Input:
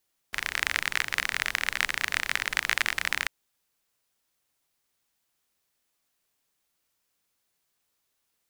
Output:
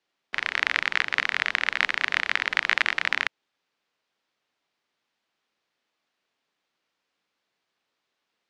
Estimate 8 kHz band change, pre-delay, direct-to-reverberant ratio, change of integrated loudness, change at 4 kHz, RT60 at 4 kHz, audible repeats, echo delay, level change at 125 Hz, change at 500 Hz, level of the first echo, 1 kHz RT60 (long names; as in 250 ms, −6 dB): −9.0 dB, no reverb audible, no reverb audible, +3.0 dB, +2.0 dB, no reverb audible, no echo audible, no echo audible, can't be measured, +4.0 dB, no echo audible, no reverb audible